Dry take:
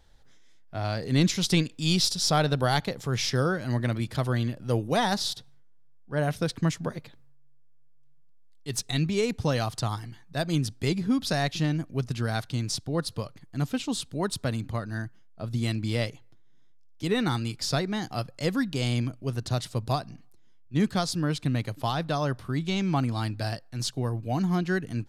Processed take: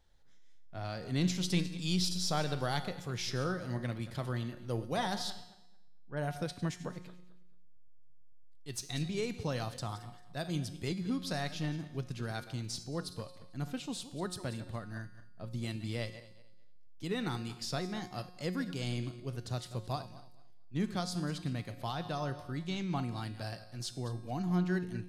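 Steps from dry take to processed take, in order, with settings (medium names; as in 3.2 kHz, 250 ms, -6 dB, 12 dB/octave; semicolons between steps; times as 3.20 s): backward echo that repeats 111 ms, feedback 47%, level -13.5 dB; 5.30–6.17 s: Savitzky-Golay filter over 25 samples; feedback comb 180 Hz, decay 0.9 s, harmonics all, mix 70%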